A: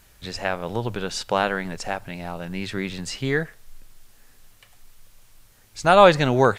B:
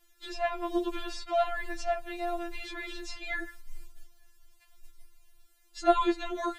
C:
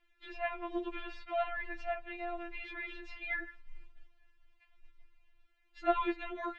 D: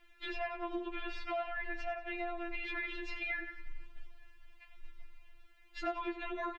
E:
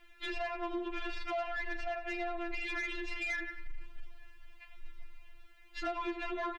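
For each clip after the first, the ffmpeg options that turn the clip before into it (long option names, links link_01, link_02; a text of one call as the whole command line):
ffmpeg -i in.wav -filter_complex "[0:a]agate=range=-9dB:threshold=-43dB:ratio=16:detection=peak,acrossover=split=710|2300|5000[link_01][link_02][link_03][link_04];[link_01]acompressor=threshold=-21dB:ratio=4[link_05];[link_02]acompressor=threshold=-32dB:ratio=4[link_06];[link_03]acompressor=threshold=-43dB:ratio=4[link_07];[link_04]acompressor=threshold=-53dB:ratio=4[link_08];[link_05][link_06][link_07][link_08]amix=inputs=4:normalize=0,afftfilt=real='re*4*eq(mod(b,16),0)':imag='im*4*eq(mod(b,16),0)':win_size=2048:overlap=0.75" out.wav
ffmpeg -i in.wav -af "lowpass=frequency=2400:width_type=q:width=2.4,volume=-7.5dB" out.wav
ffmpeg -i in.wav -af "acompressor=threshold=-46dB:ratio=5,aecho=1:1:91|182|273|364|455:0.188|0.102|0.0549|0.0297|0.016,volume=9.5dB" out.wav
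ffmpeg -i in.wav -af "asoftclip=type=tanh:threshold=-34dB,volume=4dB" out.wav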